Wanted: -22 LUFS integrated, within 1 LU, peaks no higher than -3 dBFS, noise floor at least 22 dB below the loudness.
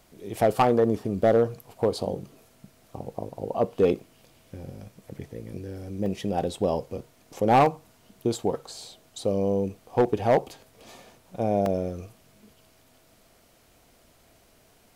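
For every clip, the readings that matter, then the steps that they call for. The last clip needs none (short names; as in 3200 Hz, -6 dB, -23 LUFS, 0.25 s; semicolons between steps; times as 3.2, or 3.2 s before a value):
clipped 0.4%; flat tops at -13.0 dBFS; dropouts 3; longest dropout 1.8 ms; loudness -26.0 LUFS; peak -13.0 dBFS; loudness target -22.0 LUFS
-> clip repair -13 dBFS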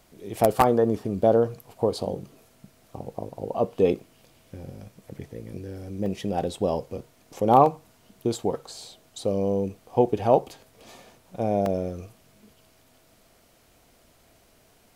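clipped 0.0%; dropouts 3; longest dropout 1.8 ms
-> interpolate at 6.06/7.66/11.66, 1.8 ms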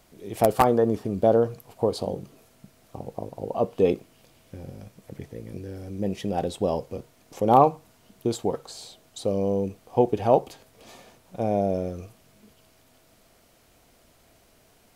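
dropouts 0; loudness -25.0 LUFS; peak -4.0 dBFS; loudness target -22.0 LUFS
-> gain +3 dB; limiter -3 dBFS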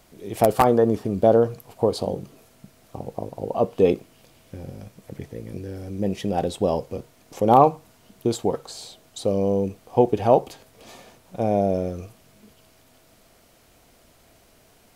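loudness -22.5 LUFS; peak -3.0 dBFS; noise floor -57 dBFS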